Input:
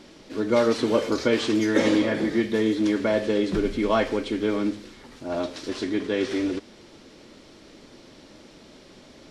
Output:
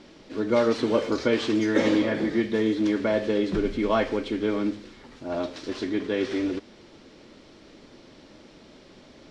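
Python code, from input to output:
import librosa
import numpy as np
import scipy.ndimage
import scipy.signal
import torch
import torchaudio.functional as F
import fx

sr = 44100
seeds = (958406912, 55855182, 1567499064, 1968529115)

y = fx.air_absorb(x, sr, metres=60.0)
y = F.gain(torch.from_numpy(y), -1.0).numpy()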